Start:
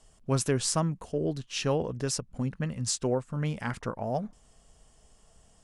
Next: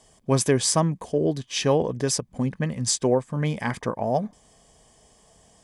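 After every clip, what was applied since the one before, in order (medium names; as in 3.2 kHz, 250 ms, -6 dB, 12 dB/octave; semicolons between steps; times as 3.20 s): comb of notches 1.4 kHz; trim +7.5 dB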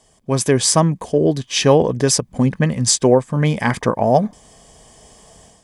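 level rider gain up to 10 dB; trim +1 dB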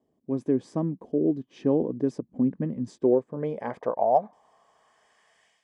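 band-pass sweep 290 Hz -> 2.2 kHz, 2.86–5.56 s; trim -4 dB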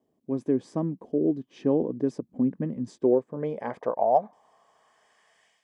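bass shelf 85 Hz -6 dB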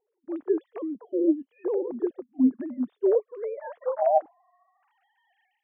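formants replaced by sine waves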